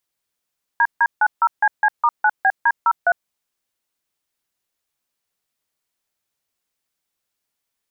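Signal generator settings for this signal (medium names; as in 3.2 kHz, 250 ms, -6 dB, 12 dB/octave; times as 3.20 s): DTMF "DD90CC*9BD03", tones 54 ms, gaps 152 ms, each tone -14.5 dBFS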